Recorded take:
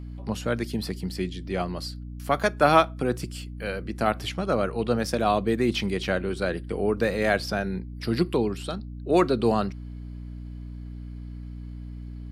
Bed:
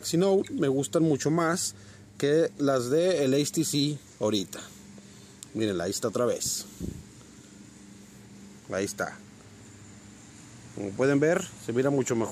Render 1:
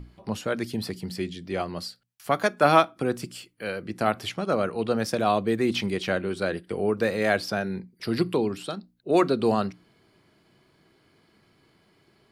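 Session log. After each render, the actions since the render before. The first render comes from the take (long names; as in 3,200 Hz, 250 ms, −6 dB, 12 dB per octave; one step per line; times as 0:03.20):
mains-hum notches 60/120/180/240/300 Hz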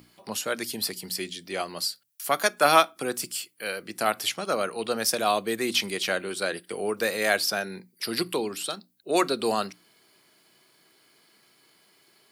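high-pass filter 94 Hz
RIAA equalisation recording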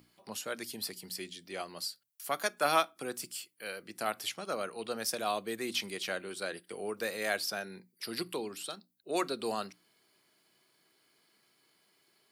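level −9 dB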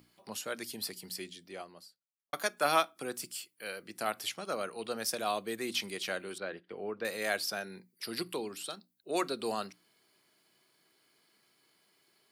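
0:01.09–0:02.33: fade out and dull
0:06.38–0:07.05: high-frequency loss of the air 310 metres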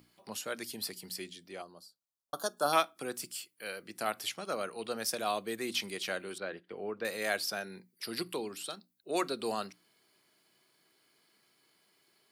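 0:01.62–0:02.73: Butterworth band-reject 2,200 Hz, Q 1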